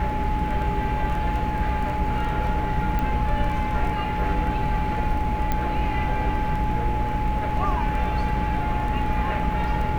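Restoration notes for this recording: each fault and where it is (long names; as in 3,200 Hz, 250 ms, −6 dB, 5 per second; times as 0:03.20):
surface crackle 10 per second
mains hum 60 Hz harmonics 5 −29 dBFS
whistle 850 Hz −27 dBFS
0:02.99: click −15 dBFS
0:05.52: click −11 dBFS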